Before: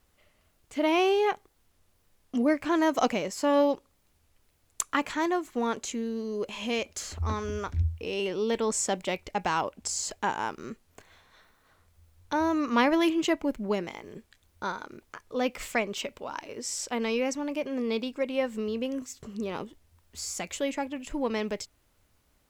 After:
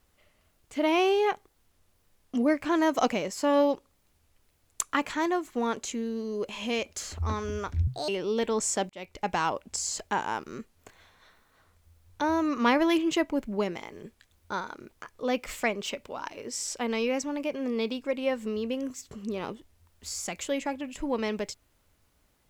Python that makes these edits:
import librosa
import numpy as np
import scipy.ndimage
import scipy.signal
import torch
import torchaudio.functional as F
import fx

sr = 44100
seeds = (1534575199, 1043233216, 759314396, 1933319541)

y = fx.edit(x, sr, fx.speed_span(start_s=7.87, length_s=0.33, speed=1.54),
    fx.fade_in_span(start_s=9.01, length_s=0.35), tone=tone)